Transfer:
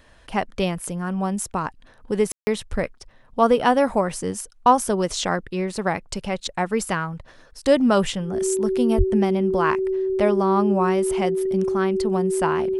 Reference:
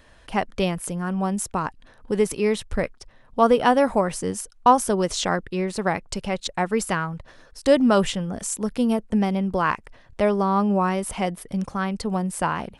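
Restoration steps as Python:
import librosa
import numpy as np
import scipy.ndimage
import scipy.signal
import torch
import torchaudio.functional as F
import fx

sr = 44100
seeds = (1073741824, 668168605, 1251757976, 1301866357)

y = fx.notch(x, sr, hz=380.0, q=30.0)
y = fx.highpass(y, sr, hz=140.0, slope=24, at=(8.97, 9.09), fade=0.02)
y = fx.fix_ambience(y, sr, seeds[0], print_start_s=7.16, print_end_s=7.66, start_s=2.32, end_s=2.47)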